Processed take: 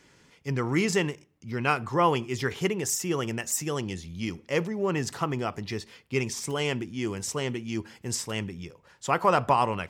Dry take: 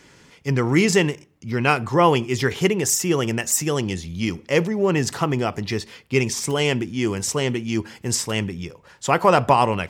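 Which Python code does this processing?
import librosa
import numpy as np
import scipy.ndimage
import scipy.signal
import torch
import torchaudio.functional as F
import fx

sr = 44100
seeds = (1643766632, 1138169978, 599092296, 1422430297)

y = fx.dynamic_eq(x, sr, hz=1200.0, q=1.8, threshold_db=-32.0, ratio=4.0, max_db=4)
y = y * librosa.db_to_amplitude(-8.0)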